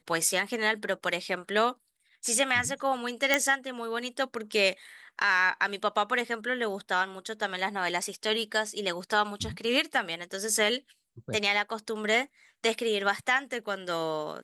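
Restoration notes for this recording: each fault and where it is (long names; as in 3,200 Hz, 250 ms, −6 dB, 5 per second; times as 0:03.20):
0:03.34: click −8 dBFS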